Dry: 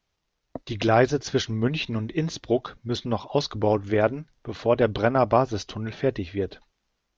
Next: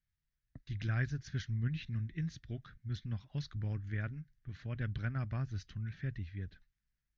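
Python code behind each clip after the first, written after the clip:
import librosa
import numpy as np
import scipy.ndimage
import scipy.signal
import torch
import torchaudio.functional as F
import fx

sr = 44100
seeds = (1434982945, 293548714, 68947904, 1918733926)

y = fx.curve_eq(x, sr, hz=(140.0, 450.0, 960.0, 1700.0, 2700.0), db=(0, -27, -27, -4, -14))
y = F.gain(torch.from_numpy(y), -5.5).numpy()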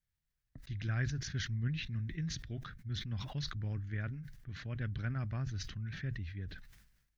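y = fx.sustainer(x, sr, db_per_s=59.0)
y = F.gain(torch.from_numpy(y), -1.0).numpy()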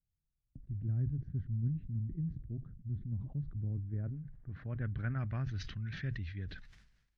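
y = fx.filter_sweep_lowpass(x, sr, from_hz=280.0, to_hz=5100.0, start_s=3.54, end_s=5.9, q=0.82)
y = F.gain(torch.from_numpy(y), 1.0).numpy()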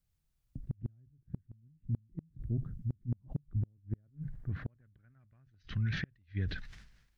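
y = fx.gate_flip(x, sr, shuts_db=-31.0, range_db=-36)
y = F.gain(torch.from_numpy(y), 7.5).numpy()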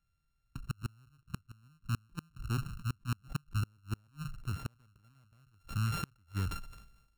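y = np.r_[np.sort(x[:len(x) // 32 * 32].reshape(-1, 32), axis=1).ravel(), x[len(x) // 32 * 32:]]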